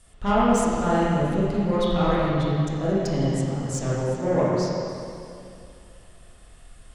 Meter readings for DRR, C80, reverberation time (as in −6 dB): −9.0 dB, −2.0 dB, 2.6 s